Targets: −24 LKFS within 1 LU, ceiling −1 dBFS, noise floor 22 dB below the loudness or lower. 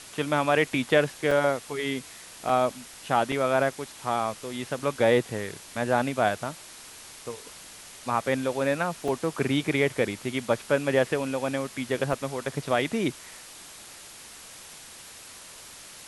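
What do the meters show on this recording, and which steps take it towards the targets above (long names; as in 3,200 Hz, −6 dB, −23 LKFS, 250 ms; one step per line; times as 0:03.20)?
number of dropouts 6; longest dropout 3.5 ms; background noise floor −46 dBFS; target noise floor −49 dBFS; integrated loudness −27.0 LKFS; sample peak −8.0 dBFS; target loudness −24.0 LKFS
→ repair the gap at 0:01.31/0:02.49/0:03.32/0:04.79/0:09.08/0:12.13, 3.5 ms
broadband denoise 6 dB, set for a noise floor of −46 dBFS
level +3 dB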